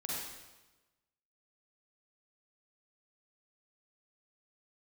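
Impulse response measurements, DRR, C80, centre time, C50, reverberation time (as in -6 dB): -5.5 dB, 0.0 dB, 95 ms, -3.5 dB, 1.1 s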